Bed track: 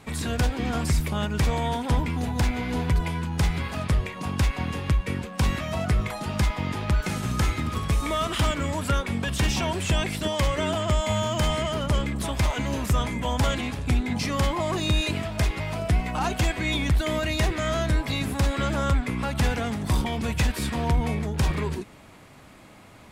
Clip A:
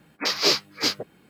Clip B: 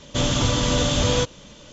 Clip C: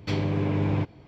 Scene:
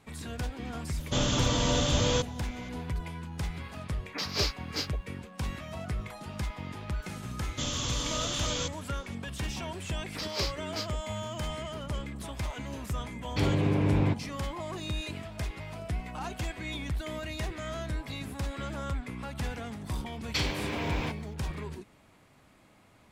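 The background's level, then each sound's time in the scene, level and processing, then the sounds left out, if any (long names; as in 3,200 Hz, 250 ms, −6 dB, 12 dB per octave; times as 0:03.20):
bed track −11 dB
0:00.97: mix in B −6 dB
0:03.93: mix in A −10.5 dB + comb filter 6.9 ms, depth 33%
0:07.43: mix in B −16 dB + high-shelf EQ 2,200 Hz +10.5 dB
0:09.93: mix in A −13.5 dB
0:13.29: mix in C −0.5 dB
0:20.27: mix in C −1 dB + spectral tilt +4.5 dB per octave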